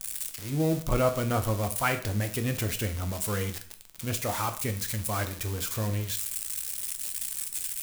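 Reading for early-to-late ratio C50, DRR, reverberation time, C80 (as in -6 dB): 12.5 dB, 7.0 dB, 0.50 s, 16.0 dB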